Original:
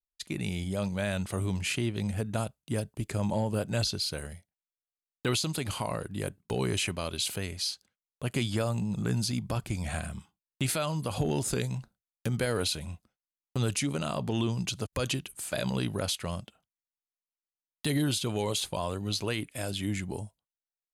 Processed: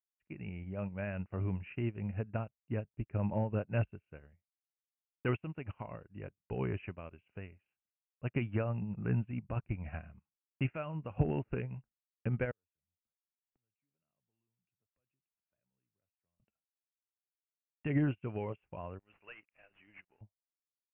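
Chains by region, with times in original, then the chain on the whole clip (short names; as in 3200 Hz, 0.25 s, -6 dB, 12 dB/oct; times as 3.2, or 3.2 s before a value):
12.51–16.4 flipped gate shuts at -34 dBFS, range -30 dB + three-band squash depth 70%
18.99–20.21 differentiator + sample leveller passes 5
whole clip: Chebyshev low-pass 2800 Hz, order 8; low shelf 110 Hz +6.5 dB; upward expander 2.5:1, over -44 dBFS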